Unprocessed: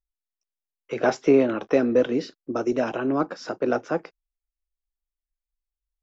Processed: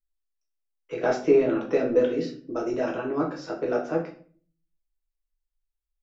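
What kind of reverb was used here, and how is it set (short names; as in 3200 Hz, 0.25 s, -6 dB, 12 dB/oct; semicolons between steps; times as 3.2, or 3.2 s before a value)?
shoebox room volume 41 m³, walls mixed, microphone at 0.67 m; gain -7 dB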